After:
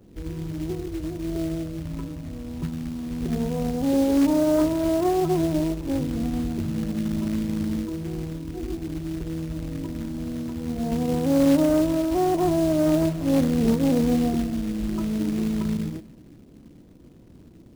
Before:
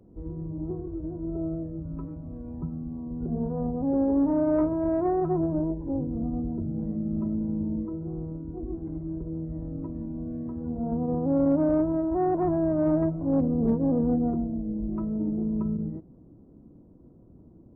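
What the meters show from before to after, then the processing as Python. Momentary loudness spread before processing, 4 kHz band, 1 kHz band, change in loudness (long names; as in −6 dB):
12 LU, can't be measured, +3.5 dB, +3.5 dB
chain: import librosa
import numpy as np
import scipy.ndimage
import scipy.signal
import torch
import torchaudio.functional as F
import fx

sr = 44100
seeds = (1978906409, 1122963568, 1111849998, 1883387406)

y = fx.rev_schroeder(x, sr, rt60_s=1.8, comb_ms=32, drr_db=17.5)
y = fx.quant_float(y, sr, bits=2)
y = F.gain(torch.from_numpy(y), 3.5).numpy()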